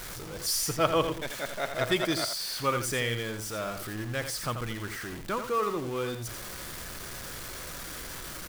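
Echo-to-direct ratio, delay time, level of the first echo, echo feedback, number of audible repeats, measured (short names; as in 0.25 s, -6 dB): -8.5 dB, 85 ms, -8.5 dB, no steady repeat, 1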